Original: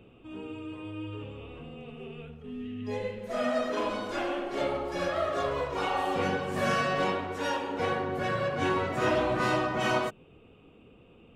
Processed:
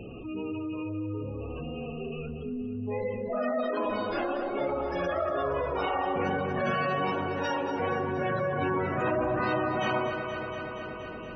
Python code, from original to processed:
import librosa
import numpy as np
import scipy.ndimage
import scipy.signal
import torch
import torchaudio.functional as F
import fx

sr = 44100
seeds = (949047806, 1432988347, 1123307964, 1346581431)

y = fx.high_shelf(x, sr, hz=2200.0, db=-9.0, at=(0.89, 1.56))
y = fx.spec_gate(y, sr, threshold_db=-20, keep='strong')
y = fx.echo_alternate(y, sr, ms=118, hz=900.0, feedback_pct=81, wet_db=-10.0)
y = fx.env_flatten(y, sr, amount_pct=50)
y = y * librosa.db_to_amplitude(-2.5)